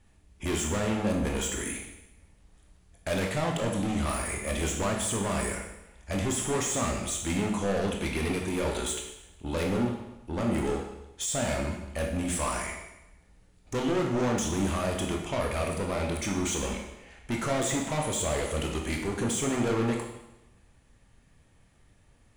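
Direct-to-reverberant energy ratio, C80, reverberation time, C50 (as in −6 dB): 0.5 dB, 7.0 dB, 0.90 s, 4.0 dB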